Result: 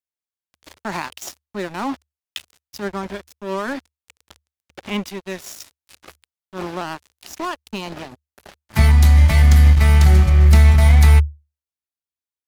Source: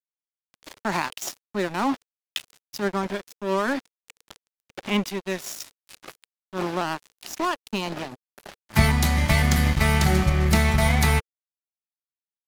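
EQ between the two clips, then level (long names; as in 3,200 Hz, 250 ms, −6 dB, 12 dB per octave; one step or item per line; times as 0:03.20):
parametric band 74 Hz +14 dB 0.35 octaves
−1.0 dB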